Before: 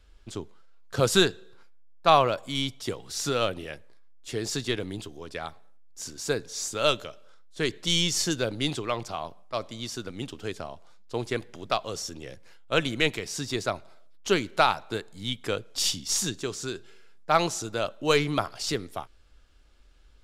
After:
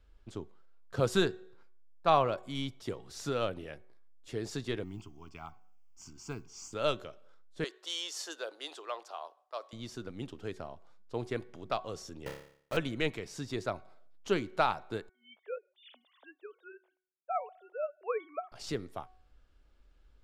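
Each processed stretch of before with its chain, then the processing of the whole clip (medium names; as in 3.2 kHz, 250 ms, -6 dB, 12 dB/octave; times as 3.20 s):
4.84–6.73 s: modulation noise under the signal 27 dB + static phaser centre 2.6 kHz, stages 8
7.64–9.73 s: Bessel high-pass 670 Hz, order 6 + peaking EQ 2.2 kHz -7.5 dB 0.28 oct
12.26–12.77 s: level held to a coarse grid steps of 10 dB + companded quantiser 2-bit + flutter echo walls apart 4.9 m, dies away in 0.57 s
15.09–18.52 s: formants replaced by sine waves + gate with hold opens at -51 dBFS, closes at -58 dBFS + ladder high-pass 490 Hz, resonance 45%
whole clip: treble shelf 2.5 kHz -10 dB; de-hum 371.2 Hz, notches 6; trim -5 dB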